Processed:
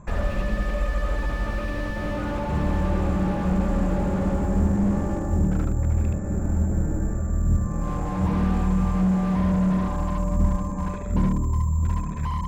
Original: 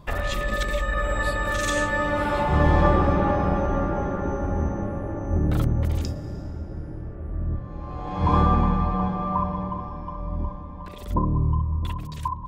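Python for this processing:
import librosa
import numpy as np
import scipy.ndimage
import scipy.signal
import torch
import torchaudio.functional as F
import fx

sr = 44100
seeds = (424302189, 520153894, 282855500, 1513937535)

y = fx.wiener(x, sr, points=15)
y = fx.peak_eq(y, sr, hz=290.0, db=-3.5, octaves=2.1)
y = y + 10.0 ** (-3.5 / 20.0) * np.pad(y, (int(75 * sr / 1000.0), 0))[:len(y)]
y = (np.kron(scipy.signal.resample_poly(y, 1, 6), np.eye(6)[0]) * 6)[:len(y)]
y = fx.graphic_eq_31(y, sr, hz=(200, 1600, 2500), db=(9, 6, 12))
y = fx.rider(y, sr, range_db=10, speed_s=0.5)
y = scipy.signal.sosfilt(scipy.signal.butter(4, 3500.0, 'lowpass', fs=sr, output='sos'), y)
y = fx.slew_limit(y, sr, full_power_hz=28.0)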